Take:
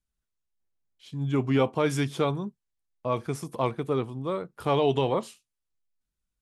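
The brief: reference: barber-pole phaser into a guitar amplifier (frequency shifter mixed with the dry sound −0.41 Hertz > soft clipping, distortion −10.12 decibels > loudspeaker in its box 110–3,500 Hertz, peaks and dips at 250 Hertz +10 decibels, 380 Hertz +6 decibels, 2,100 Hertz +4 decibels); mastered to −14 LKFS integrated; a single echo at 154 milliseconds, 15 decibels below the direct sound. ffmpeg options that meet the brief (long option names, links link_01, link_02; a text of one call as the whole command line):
ffmpeg -i in.wav -filter_complex "[0:a]aecho=1:1:154:0.178,asplit=2[link_01][link_02];[link_02]afreqshift=-0.41[link_03];[link_01][link_03]amix=inputs=2:normalize=1,asoftclip=threshold=-26.5dB,highpass=110,equalizer=frequency=250:width_type=q:width=4:gain=10,equalizer=frequency=380:width_type=q:width=4:gain=6,equalizer=frequency=2100:width_type=q:width=4:gain=4,lowpass=frequency=3500:width=0.5412,lowpass=frequency=3500:width=1.3066,volume=18dB" out.wav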